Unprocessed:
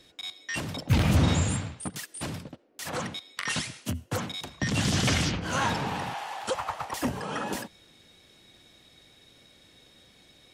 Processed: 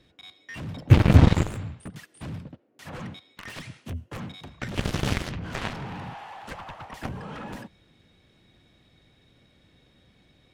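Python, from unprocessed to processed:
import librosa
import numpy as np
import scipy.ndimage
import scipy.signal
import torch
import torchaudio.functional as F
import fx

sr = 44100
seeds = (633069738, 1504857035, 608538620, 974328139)

y = fx.cheby_harmonics(x, sr, harmonics=(3, 7), levels_db=(-17, -17), full_scale_db=-10.0)
y = fx.bass_treble(y, sr, bass_db=8, treble_db=-11)
y = F.gain(torch.from_numpy(y), 4.0).numpy()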